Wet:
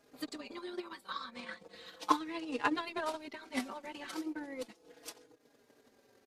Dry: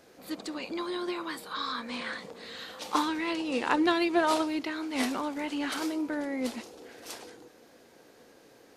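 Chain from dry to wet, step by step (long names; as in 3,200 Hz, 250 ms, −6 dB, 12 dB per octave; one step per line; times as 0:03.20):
transient designer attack +10 dB, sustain −10 dB
tempo change 1.4×
barber-pole flanger 4.4 ms −0.37 Hz
level −7 dB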